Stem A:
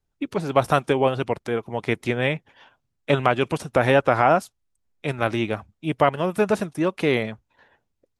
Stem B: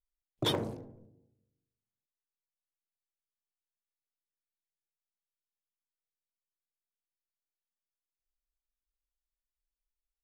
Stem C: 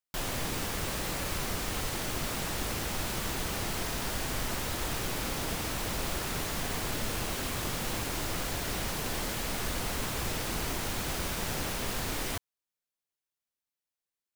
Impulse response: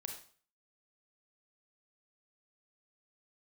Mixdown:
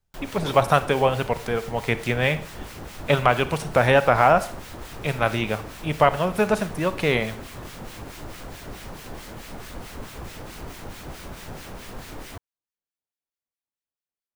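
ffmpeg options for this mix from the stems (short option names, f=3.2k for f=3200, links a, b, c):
-filter_complex "[0:a]equalizer=f=320:t=o:w=0.68:g=-8.5,volume=-1dB,asplit=3[a][b][c];[b]volume=-3.5dB[d];[1:a]volume=0dB[e];[2:a]equalizer=f=16k:t=o:w=2.4:g=-7.5,acrossover=split=1400[f][g];[f]aeval=exprs='val(0)*(1-0.7/2+0.7/2*cos(2*PI*4.6*n/s))':c=same[h];[g]aeval=exprs='val(0)*(1-0.7/2-0.7/2*cos(2*PI*4.6*n/s))':c=same[i];[h][i]amix=inputs=2:normalize=0,volume=0.5dB[j];[c]apad=whole_len=451309[k];[e][k]sidechaincompress=threshold=-26dB:ratio=8:attack=16:release=911[l];[3:a]atrim=start_sample=2205[m];[d][m]afir=irnorm=-1:irlink=0[n];[a][l][j][n]amix=inputs=4:normalize=0"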